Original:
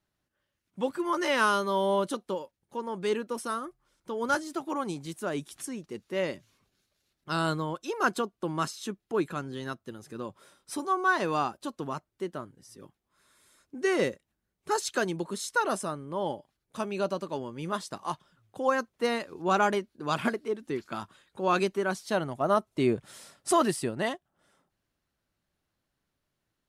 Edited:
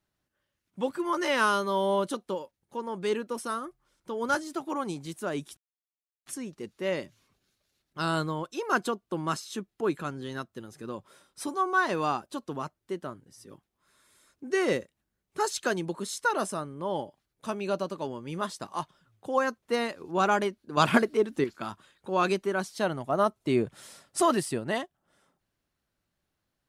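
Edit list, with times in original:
0:05.57: splice in silence 0.69 s
0:20.08–0:20.75: clip gain +6.5 dB

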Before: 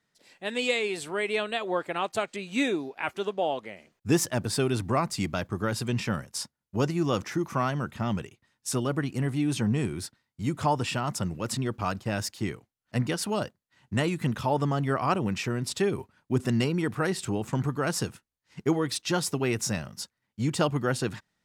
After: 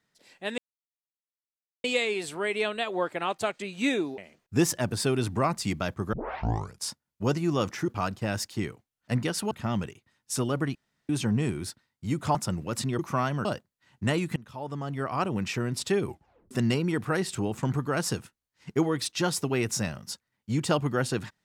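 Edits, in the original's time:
0:00.58: splice in silence 1.26 s
0:02.92–0:03.71: remove
0:05.66: tape start 0.70 s
0:07.41–0:07.87: swap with 0:11.72–0:13.35
0:09.11–0:09.45: fill with room tone
0:10.71–0:11.08: remove
0:14.26–0:15.44: fade in, from −22 dB
0:15.98: tape stop 0.43 s

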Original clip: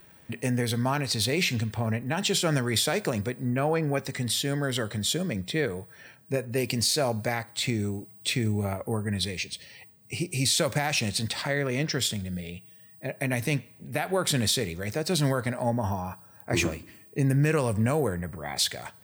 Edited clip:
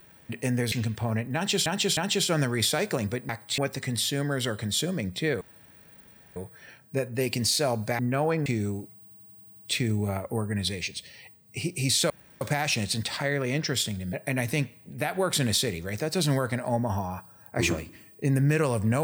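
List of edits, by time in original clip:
0:00.72–0:01.48: remove
0:02.11–0:02.42: repeat, 3 plays
0:03.43–0:03.90: swap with 0:07.36–0:07.65
0:05.73: splice in room tone 0.95 s
0:08.15: stutter 0.09 s, 8 plays
0:10.66: splice in room tone 0.31 s
0:12.38–0:13.07: remove

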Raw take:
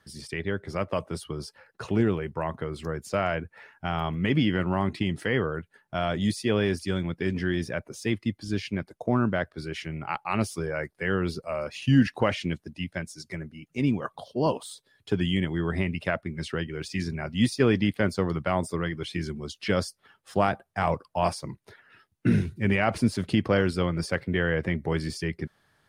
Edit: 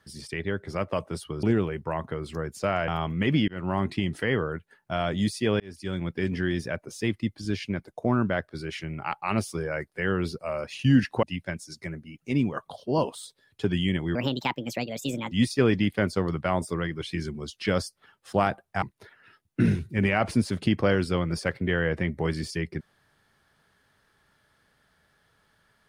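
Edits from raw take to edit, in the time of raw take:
0:01.43–0:01.93: remove
0:03.38–0:03.91: remove
0:04.51–0:04.87: fade in equal-power
0:06.63–0:07.09: fade in
0:12.26–0:12.71: remove
0:15.63–0:17.33: play speed 146%
0:20.84–0:21.49: remove

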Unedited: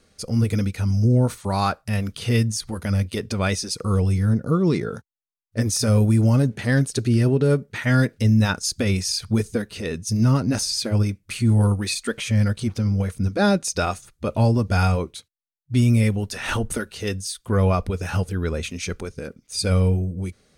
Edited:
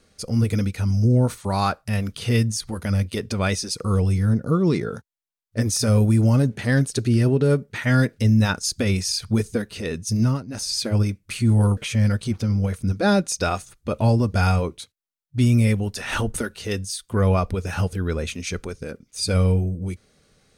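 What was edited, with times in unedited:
0:10.20–0:10.74: duck −16 dB, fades 0.26 s
0:11.77–0:12.13: remove

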